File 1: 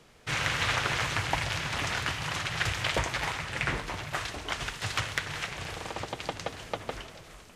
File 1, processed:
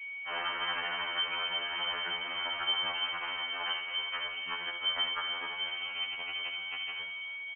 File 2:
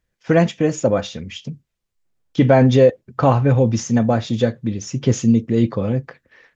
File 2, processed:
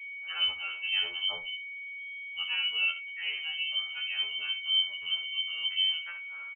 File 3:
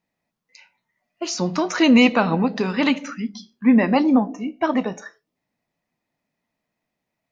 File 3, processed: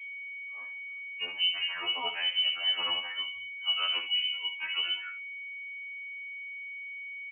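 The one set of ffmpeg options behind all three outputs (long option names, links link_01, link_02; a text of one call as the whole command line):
ffmpeg -i in.wav -af "asubboost=boost=3:cutoff=180,areverse,acompressor=threshold=-24dB:ratio=4,areverse,aeval=exprs='val(0)+0.002*(sin(2*PI*60*n/s)+sin(2*PI*2*60*n/s)/2+sin(2*PI*3*60*n/s)/3+sin(2*PI*4*60*n/s)/4+sin(2*PI*5*60*n/s)/5)':channel_layout=same,aecho=1:1:12|69:0.596|0.335,aeval=exprs='val(0)+0.0126*sin(2*PI*960*n/s)':channel_layout=same,lowpass=frequency=2700:width_type=q:width=0.5098,lowpass=frequency=2700:width_type=q:width=0.6013,lowpass=frequency=2700:width_type=q:width=0.9,lowpass=frequency=2700:width_type=q:width=2.563,afreqshift=-3200,afftfilt=real='re*2*eq(mod(b,4),0)':imag='im*2*eq(mod(b,4),0)':win_size=2048:overlap=0.75,volume=-4.5dB" out.wav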